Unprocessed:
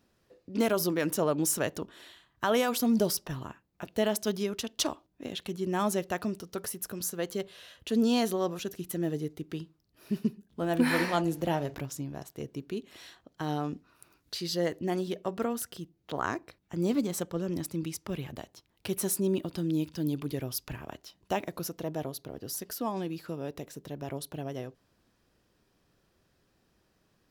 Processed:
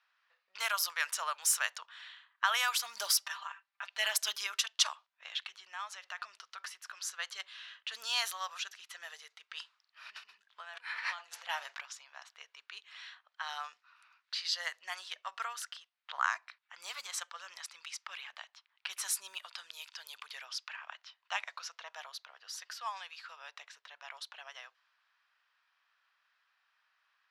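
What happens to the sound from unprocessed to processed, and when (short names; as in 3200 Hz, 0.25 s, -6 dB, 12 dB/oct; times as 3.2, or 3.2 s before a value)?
2.96–4.66 comb 5.1 ms, depth 91%
5.28–6.86 compressor 16:1, threshold -31 dBFS
9.55–11.49 negative-ratio compressor -37 dBFS
20.45–21.93 LPF 8400 Hz
whole clip: low-pass opened by the level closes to 2900 Hz, open at -23.5 dBFS; inverse Chebyshev high-pass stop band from 330 Hz, stop band 60 dB; high shelf 10000 Hz -9 dB; gain +4.5 dB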